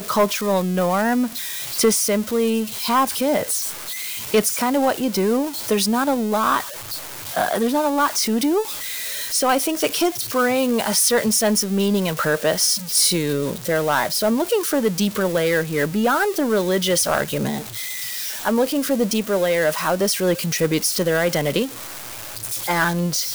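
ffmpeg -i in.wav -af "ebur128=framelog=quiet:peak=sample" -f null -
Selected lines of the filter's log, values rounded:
Integrated loudness:
  I:         -20.0 LUFS
  Threshold: -30.1 LUFS
Loudness range:
  LRA:         2.7 LU
  Threshold: -40.0 LUFS
  LRA low:   -21.0 LUFS
  LRA high:  -18.3 LUFS
Sample peak:
  Peak:       -7.8 dBFS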